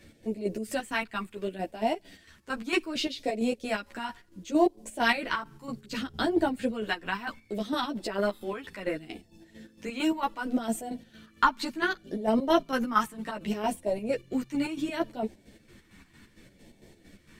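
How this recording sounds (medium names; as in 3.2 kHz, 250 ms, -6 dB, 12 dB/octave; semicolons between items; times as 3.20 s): phasing stages 2, 0.67 Hz, lowest notch 580–1200 Hz; chopped level 4.4 Hz, depth 60%, duty 50%; a shimmering, thickened sound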